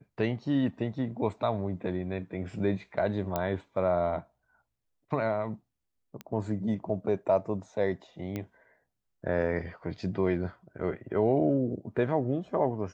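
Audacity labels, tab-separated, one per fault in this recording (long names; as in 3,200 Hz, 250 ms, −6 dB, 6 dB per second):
3.360000	3.360000	click −15 dBFS
6.210000	6.210000	click −24 dBFS
8.360000	8.360000	click −21 dBFS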